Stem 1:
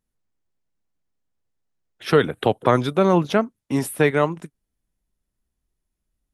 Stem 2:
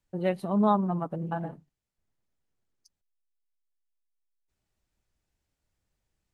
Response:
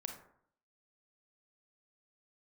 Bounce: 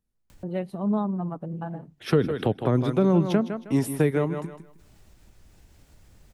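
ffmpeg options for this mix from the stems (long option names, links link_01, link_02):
-filter_complex "[0:a]volume=-5dB,asplit=3[link_01][link_02][link_03];[link_02]volume=-10.5dB[link_04];[1:a]acompressor=mode=upward:threshold=-31dB:ratio=2.5,adelay=300,volume=-5dB[link_05];[link_03]apad=whole_len=297044[link_06];[link_05][link_06]sidechaincompress=threshold=-37dB:ratio=8:attack=16:release=446[link_07];[link_04]aecho=0:1:157|314|471|628:1|0.23|0.0529|0.0122[link_08];[link_01][link_07][link_08]amix=inputs=3:normalize=0,lowshelf=frequency=440:gain=6,acrossover=split=430[link_09][link_10];[link_10]acompressor=threshold=-28dB:ratio=10[link_11];[link_09][link_11]amix=inputs=2:normalize=0"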